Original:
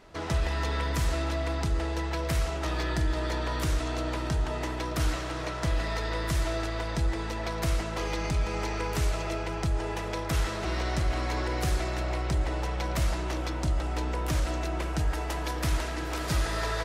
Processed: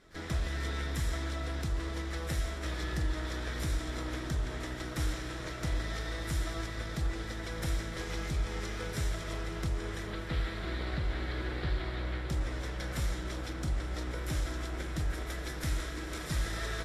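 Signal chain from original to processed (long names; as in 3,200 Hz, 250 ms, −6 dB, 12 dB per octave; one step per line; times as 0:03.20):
lower of the sound and its delayed copy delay 0.54 ms
0:10.07–0:12.30: Butterworth low-pass 4,700 Hz 96 dB per octave
feedback delay with all-pass diffusion 1,416 ms, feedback 57%, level −13 dB
level −5 dB
Ogg Vorbis 32 kbit/s 48,000 Hz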